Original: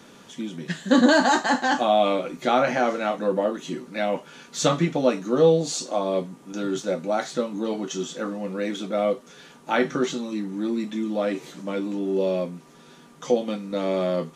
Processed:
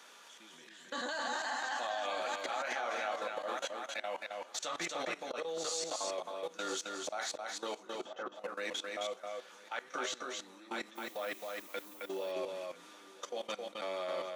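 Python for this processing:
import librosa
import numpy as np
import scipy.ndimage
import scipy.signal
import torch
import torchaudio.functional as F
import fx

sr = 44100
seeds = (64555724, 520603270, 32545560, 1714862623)

y = fx.echo_feedback(x, sr, ms=1000, feedback_pct=34, wet_db=-15)
y = fx.auto_swell(y, sr, attack_ms=117.0)
y = scipy.signal.sosfilt(scipy.signal.butter(2, 800.0, 'highpass', fs=sr, output='sos'), y)
y = fx.level_steps(y, sr, step_db=19)
y = fx.lowpass(y, sr, hz=fx.line((7.82, 1900.0), (8.34, 1200.0)), slope=12, at=(7.82, 8.34), fade=0.02)
y = fx.dmg_noise_colour(y, sr, seeds[0], colour='violet', level_db=-57.0, at=(10.95, 12.04), fade=0.02)
y = y + 10.0 ** (-3.5 / 20.0) * np.pad(y, (int(266 * sr / 1000.0), 0))[:len(y)]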